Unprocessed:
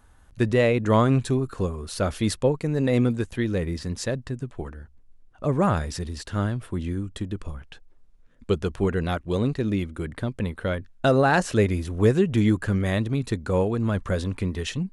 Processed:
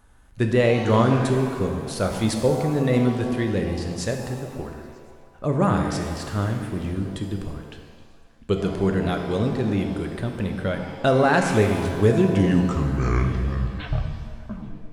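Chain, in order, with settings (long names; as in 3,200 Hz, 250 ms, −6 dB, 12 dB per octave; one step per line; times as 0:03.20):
turntable brake at the end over 2.86 s
echo through a band-pass that steps 118 ms, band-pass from 180 Hz, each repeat 0.7 octaves, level −7 dB
reverb with rising layers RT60 1.5 s, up +7 semitones, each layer −8 dB, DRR 4.5 dB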